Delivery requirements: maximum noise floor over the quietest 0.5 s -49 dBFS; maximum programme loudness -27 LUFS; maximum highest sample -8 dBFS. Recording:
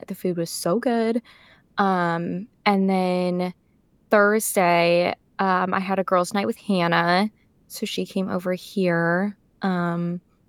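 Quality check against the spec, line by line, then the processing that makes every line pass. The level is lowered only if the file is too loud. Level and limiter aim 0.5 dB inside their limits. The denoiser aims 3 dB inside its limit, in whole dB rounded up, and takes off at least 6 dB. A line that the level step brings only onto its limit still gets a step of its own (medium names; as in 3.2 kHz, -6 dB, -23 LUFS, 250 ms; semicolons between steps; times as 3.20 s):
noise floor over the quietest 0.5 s -61 dBFS: pass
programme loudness -22.5 LUFS: fail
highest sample -5.0 dBFS: fail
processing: trim -5 dB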